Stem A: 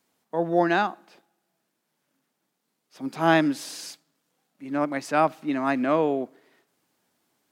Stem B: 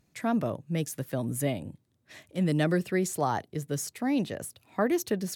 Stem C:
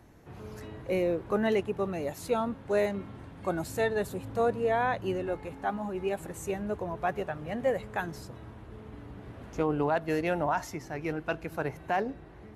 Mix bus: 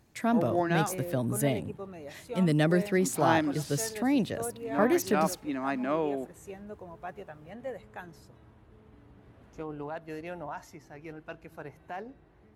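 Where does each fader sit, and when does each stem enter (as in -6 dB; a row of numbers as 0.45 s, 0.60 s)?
-7.0 dB, +1.0 dB, -10.5 dB; 0.00 s, 0.00 s, 0.00 s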